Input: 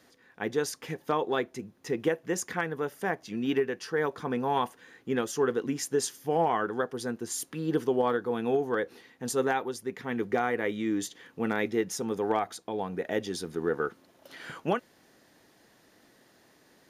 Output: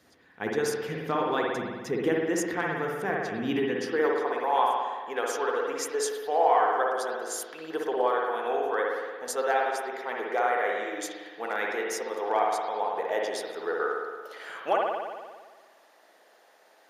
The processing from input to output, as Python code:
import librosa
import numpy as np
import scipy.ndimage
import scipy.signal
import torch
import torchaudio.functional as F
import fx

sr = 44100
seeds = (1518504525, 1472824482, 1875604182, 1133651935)

y = fx.hpss(x, sr, part='harmonic', gain_db=-4)
y = fx.filter_sweep_highpass(y, sr, from_hz=61.0, to_hz=630.0, start_s=3.31, end_s=4.25, q=1.7)
y = fx.rev_spring(y, sr, rt60_s=1.5, pass_ms=(56,), chirp_ms=55, drr_db=-1.5)